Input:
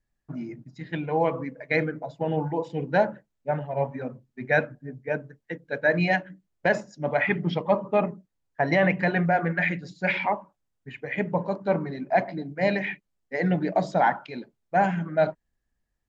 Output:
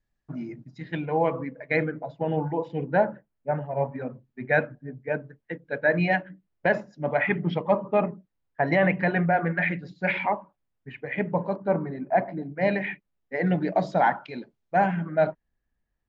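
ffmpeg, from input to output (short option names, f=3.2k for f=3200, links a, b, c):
-af "asetnsamples=n=441:p=0,asendcmd='1.05 lowpass f 3200;2.85 lowpass f 2000;3.96 lowpass f 3100;11.56 lowpass f 1700;12.43 lowpass f 2900;13.47 lowpass f 5200;14.84 lowpass f 3000',lowpass=6k"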